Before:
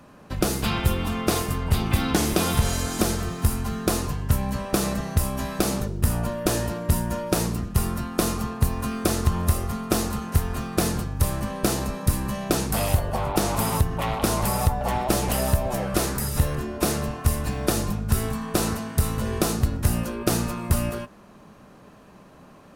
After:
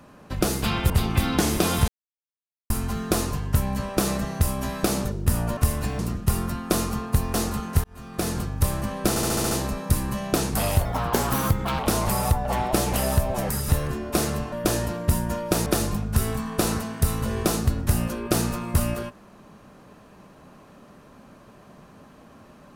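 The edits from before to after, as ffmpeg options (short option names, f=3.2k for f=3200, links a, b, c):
-filter_complex "[0:a]asplit=19[a][b][c][d][e][f][g][h][i][j][k][l][m][n][o][p][q][r][s];[a]atrim=end=0.902[t];[b]atrim=start=1.658:end=2.64,asetpts=PTS-STARTPTS,afade=t=out:st=0.978:d=0.004:c=hsin[u];[c]atrim=start=2.64:end=3.46,asetpts=PTS-STARTPTS,volume=0[v];[d]atrim=start=3.46:end=6.332,asetpts=PTS-STARTPTS,afade=t=in:d=0.004:c=hsin[w];[e]atrim=start=17.198:end=17.622[x];[f]atrim=start=7.468:end=8.822[y];[g]atrim=start=9.928:end=10.43,asetpts=PTS-STARTPTS,afade=t=out:st=0.498:d=0.004:c=hsin[z];[h]atrim=start=10.43:end=11.752,asetpts=PTS-STARTPTS,afade=t=in:d=0.61[aa];[i]atrim=start=11.678:end=11.752[ab];[j]atrim=start=11.678:end=11.752[ac];[k]atrim=start=11.678:end=11.752[ad];[l]atrim=start=11.678:end=11.752[ae];[m]atrim=start=11.678:end=11.752[af];[n]atrim=start=11.678:end=13.024[ag];[o]atrim=start=13.02:end=14.15,asetpts=PTS-STARTPTS,asetrate=52920,aresample=44100[ah];[p]atrim=start=14.146:end=15.852[ai];[q]atrim=start=16.168:end=17.202[aj];[r]atrim=start=6.328:end=7.472[ak];[s]atrim=start=17.618[al];[u][v][w]concat=n=3:v=0:a=1[am];[t][am]acrossfade=d=0.004:c1=hsin:c2=hsin[an];[an][x]acrossfade=d=0.004:c1=hsin:c2=hsin[ao];[ao][y]acrossfade=d=0.004:c1=hsin:c2=hsin[ap];[z][aa]concat=n=2:v=0:a=1[aq];[ap][aq]acrossfade=d=0.004:c1=hsin:c2=hsin[ar];[ar][ab]acrossfade=d=0.004:c1=hsin:c2=hsin[as];[as][ac]acrossfade=d=0.004:c1=hsin:c2=hsin[at];[at][ad]acrossfade=d=0.004:c1=hsin:c2=hsin[au];[au][ae]acrossfade=d=0.004:c1=hsin:c2=hsin[av];[av][af]acrossfade=d=0.004:c1=hsin:c2=hsin[aw];[aw][ag]acrossfade=d=0.004:c1=hsin:c2=hsin[ax];[ax][ah]acrossfade=d=0.004:c1=hsin:c2=hsin[ay];[ay][ai]acrossfade=d=0.004:c1=hsin:c2=hsin[az];[az][aj]acrossfade=d=0.004:c1=hsin:c2=hsin[ba];[ba][ak]acrossfade=d=0.004:c1=hsin:c2=hsin[bb];[bb][al]acrossfade=d=0.004:c1=hsin:c2=hsin"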